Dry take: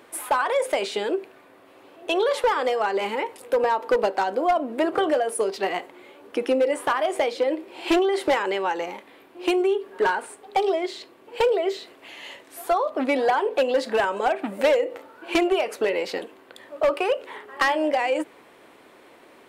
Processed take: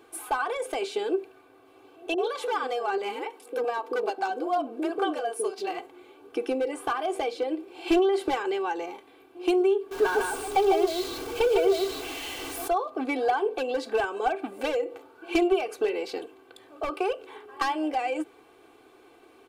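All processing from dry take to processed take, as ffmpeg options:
-filter_complex "[0:a]asettb=1/sr,asplit=3[s0][s1][s2];[s0]atrim=end=2.144[s3];[s1]atrim=start=2.14:end=5.79,asetpts=PTS-STARTPTS,afade=t=in:d=0.004:c=qsin,afade=t=out:st=3.646:d=0.004:c=qsin,highpass=f=180:w=0.5412,highpass=f=180:w=1.3066,acrossover=split=470[s4][s5];[s5]adelay=40[s6];[s4][s6]amix=inputs=2:normalize=0,atrim=end_sample=160965[s7];[s2]atrim=start=5.786[s8];[s3][s7]acrossfade=d=0.004:c1=hsin:c2=qsin[s9];[s9][s8]acrossfade=d=0.004:c1=qsin:c2=hsin,asettb=1/sr,asplit=3[s10][s11][s12];[s10]atrim=end=9.914[s13];[s11]atrim=start=9.91:end=12.68,asetpts=PTS-STARTPTS,afade=t=in:d=0.004:c=qsin,afade=t=out:st=2.766:d=0.004:c=qsin,aeval=exprs='val(0)+0.5*0.0398*sgn(val(0))':c=same,aecho=1:1:151:0.668,atrim=end_sample=122157[s14];[s12]atrim=start=12.676[s15];[s13][s14]acrossfade=d=0.004:c1=hsin:c2=qsin[s16];[s16][s15]acrossfade=d=0.004:c1=qsin:c2=hsin,lowshelf=f=340:g=4.5,bandreject=f=1900:w=6.6,aecho=1:1:2.6:0.74,volume=0.422"

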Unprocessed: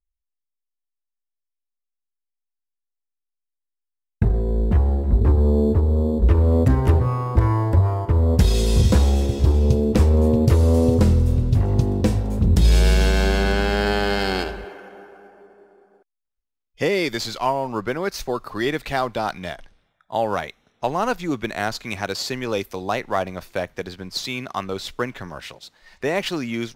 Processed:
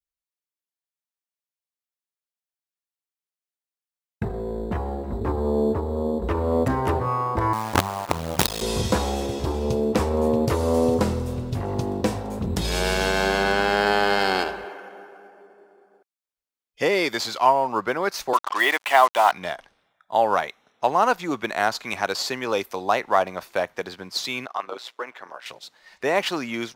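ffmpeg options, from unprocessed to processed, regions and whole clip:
-filter_complex "[0:a]asettb=1/sr,asplit=3[s0][s1][s2];[s0]atrim=end=7.534[s3];[s1]atrim=start=7.53:end=8.62,asetpts=PTS-STARTPTS,afade=t=in:d=0.004:c=qsin,afade=t=out:st=1.086:d=0.004:c=qsin,highpass=50,equalizer=f=350:w=1.1:g=-8,acrusher=bits=3:dc=4:mix=0:aa=0.000001[s4];[s2]atrim=start=8.616[s5];[s3][s4]acrossfade=d=0.004:c1=hsin:c2=qsin[s6];[s6][s5]acrossfade=d=0.004:c1=qsin:c2=hsin,asettb=1/sr,asplit=3[s7][s8][s9];[s7]atrim=end=18.334[s10];[s8]atrim=start=18.33:end=19.32,asetpts=PTS-STARTPTS,afade=t=in:d=0.004:c=qsin,afade=t=out:st=0.986:d=0.004:c=qsin,highpass=f=300:w=0.5412,highpass=f=300:w=1.3066,equalizer=f=330:t=q:w=4:g=-4,equalizer=f=460:t=q:w=4:g=-6,equalizer=f=690:t=q:w=4:g=4,equalizer=f=1000:t=q:w=4:g=7,equalizer=f=2000:t=q:w=4:g=8,equalizer=f=3000:t=q:w=4:g=9,lowpass=f=3900:w=0.5412,lowpass=f=3900:w=1.3066,acrusher=bits=4:mix=0:aa=0.5[s11];[s9]atrim=start=19.316[s12];[s10][s11]acrossfade=d=0.004:c1=hsin:c2=qsin[s13];[s13][s12]acrossfade=d=0.004:c1=qsin:c2=hsin,asettb=1/sr,asplit=3[s14][s15][s16];[s14]atrim=end=24.464[s17];[s15]atrim=start=24.46:end=25.46,asetpts=PTS-STARTPTS,afade=t=in:d=0.004:c=qsin,afade=t=out:st=0.996:d=0.004:c=qsin,highpass=440,highshelf=f=4500:g=-8.5,tremolo=f=120:d=0.75[s18];[s16]atrim=start=25.456[s19];[s17][s18]acrossfade=d=0.004:c1=hsin:c2=qsin[s20];[s20][s19]acrossfade=d=0.004:c1=qsin:c2=hsin,highpass=f=330:p=1,adynamicequalizer=threshold=0.0126:dfrequency=950:dqfactor=1:tfrequency=950:tqfactor=1:attack=5:release=100:ratio=0.375:range=3:mode=boostabove:tftype=bell"

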